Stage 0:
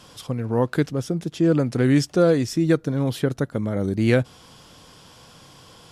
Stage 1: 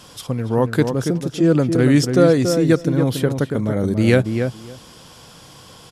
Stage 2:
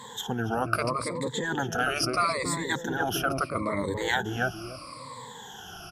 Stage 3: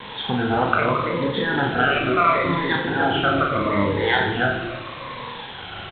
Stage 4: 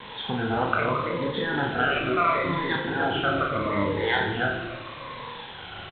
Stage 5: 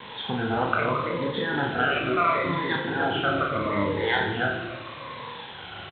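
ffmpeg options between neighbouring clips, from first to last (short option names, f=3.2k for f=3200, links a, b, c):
-filter_complex "[0:a]highshelf=f=6.9k:g=5,asplit=2[a][b];[b]adelay=281,lowpass=f=1.5k:p=1,volume=-6dB,asplit=2[c][d];[d]adelay=281,lowpass=f=1.5k:p=1,volume=0.15,asplit=2[e][f];[f]adelay=281,lowpass=f=1.5k:p=1,volume=0.15[g];[c][e][g]amix=inputs=3:normalize=0[h];[a][h]amix=inputs=2:normalize=0,volume=3.5dB"
-af "afftfilt=real='re*pow(10,24/40*sin(2*PI*(1*log(max(b,1)*sr/1024/100)/log(2)-(-0.76)*(pts-256)/sr)))':imag='im*pow(10,24/40*sin(2*PI*(1*log(max(b,1)*sr/1024/100)/log(2)-(-0.76)*(pts-256)/sr)))':win_size=1024:overlap=0.75,afftfilt=real='re*lt(hypot(re,im),0.794)':imag='im*lt(hypot(re,im),0.794)':win_size=1024:overlap=0.75,equalizer=f=1.1k:w=0.96:g=8.5,volume=-8dB"
-filter_complex "[0:a]aresample=8000,acrusher=bits=6:mix=0:aa=0.000001,aresample=44100,asplit=2[a][b];[b]adelay=29,volume=-7.5dB[c];[a][c]amix=inputs=2:normalize=0,aecho=1:1:40|90|152.5|230.6|328.3:0.631|0.398|0.251|0.158|0.1,volume=5.5dB"
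-filter_complex "[0:a]asplit=2[a][b];[b]adelay=27,volume=-12dB[c];[a][c]amix=inputs=2:normalize=0,volume=-5dB"
-af "highpass=66"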